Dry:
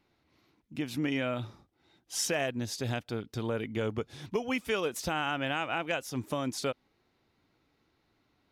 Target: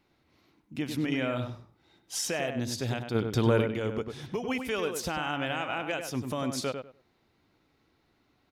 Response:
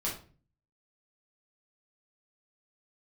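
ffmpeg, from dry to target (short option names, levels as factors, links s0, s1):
-filter_complex "[0:a]alimiter=limit=0.0668:level=0:latency=1:release=112,asplit=3[s0][s1][s2];[s0]afade=t=out:st=3.14:d=0.02[s3];[s1]acontrast=76,afade=t=in:st=3.14:d=0.02,afade=t=out:st=3.61:d=0.02[s4];[s2]afade=t=in:st=3.61:d=0.02[s5];[s3][s4][s5]amix=inputs=3:normalize=0,asplit=2[s6][s7];[s7]adelay=98,lowpass=f=2000:p=1,volume=0.501,asplit=2[s8][s9];[s9]adelay=98,lowpass=f=2000:p=1,volume=0.21,asplit=2[s10][s11];[s11]adelay=98,lowpass=f=2000:p=1,volume=0.21[s12];[s6][s8][s10][s12]amix=inputs=4:normalize=0,volume=1.26"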